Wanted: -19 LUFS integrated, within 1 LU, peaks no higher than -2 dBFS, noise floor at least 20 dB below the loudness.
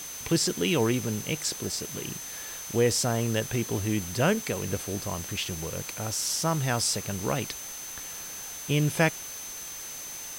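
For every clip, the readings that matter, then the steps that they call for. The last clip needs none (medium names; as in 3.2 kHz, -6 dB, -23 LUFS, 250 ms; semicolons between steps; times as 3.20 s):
steady tone 6.2 kHz; tone level -39 dBFS; noise floor -39 dBFS; noise floor target -49 dBFS; loudness -28.5 LUFS; peak level -9.5 dBFS; loudness target -19.0 LUFS
-> band-stop 6.2 kHz, Q 30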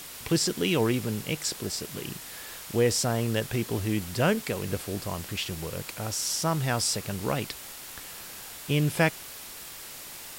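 steady tone not found; noise floor -43 dBFS; noise floor target -49 dBFS
-> noise reduction 6 dB, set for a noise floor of -43 dBFS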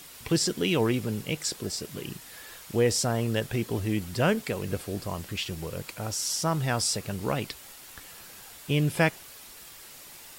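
noise floor -47 dBFS; noise floor target -49 dBFS
-> noise reduction 6 dB, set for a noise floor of -47 dBFS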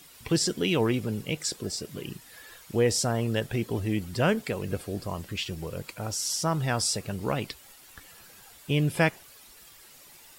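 noise floor -52 dBFS; loudness -28.5 LUFS; peak level -10.0 dBFS; loudness target -19.0 LUFS
-> trim +9.5 dB; peak limiter -2 dBFS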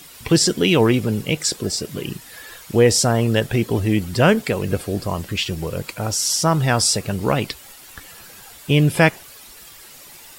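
loudness -19.0 LUFS; peak level -2.0 dBFS; noise floor -43 dBFS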